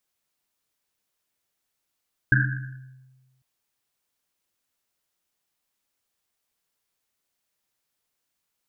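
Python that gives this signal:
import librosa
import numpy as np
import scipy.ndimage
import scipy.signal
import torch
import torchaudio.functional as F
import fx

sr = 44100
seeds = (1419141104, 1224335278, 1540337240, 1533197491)

y = fx.risset_drum(sr, seeds[0], length_s=1.1, hz=130.0, decay_s=1.37, noise_hz=1600.0, noise_width_hz=220.0, noise_pct=45)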